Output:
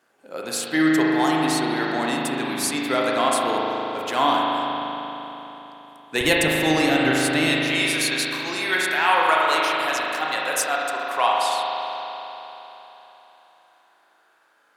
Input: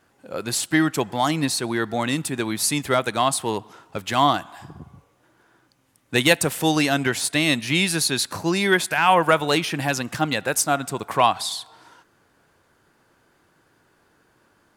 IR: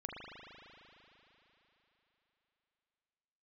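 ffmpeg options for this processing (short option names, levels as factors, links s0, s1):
-filter_complex "[0:a]asetnsamples=n=441:p=0,asendcmd='6.21 highpass f 130;7.48 highpass f 640',highpass=270[s0];[1:a]atrim=start_sample=2205[s1];[s0][s1]afir=irnorm=-1:irlink=0,volume=1.19"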